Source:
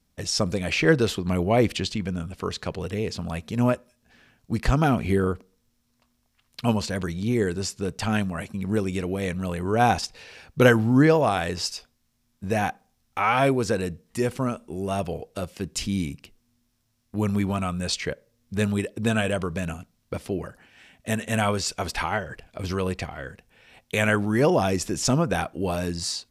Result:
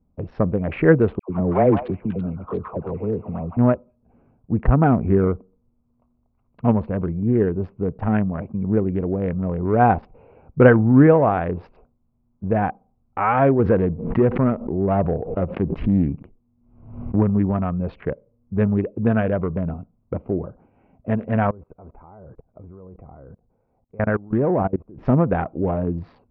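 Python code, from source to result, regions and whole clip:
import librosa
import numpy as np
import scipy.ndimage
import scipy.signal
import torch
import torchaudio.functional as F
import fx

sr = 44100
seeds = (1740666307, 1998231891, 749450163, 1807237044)

y = fx.chain(x, sr, fx.low_shelf(hz=89.0, db=-8.0),
    fx.dispersion(late='lows', ms=106.0, hz=1000.0),
    fx.echo_stepped(ms=166, hz=1200.0, octaves=1.4, feedback_pct=70, wet_db=0), at=(1.19, 3.57))
y = fx.chain(y, sr, fx.leveller(passes=1),
    fx.pre_swell(db_per_s=78.0), at=(13.59, 17.23))
y = fx.chain(y, sr, fx.lowpass(hz=1900.0, slope=24),
    fx.level_steps(step_db=23), at=(21.47, 24.98))
y = fx.wiener(y, sr, points=25)
y = scipy.signal.sosfilt(scipy.signal.bessel(6, 1300.0, 'lowpass', norm='mag', fs=sr, output='sos'), y)
y = y * librosa.db_to_amplitude(5.5)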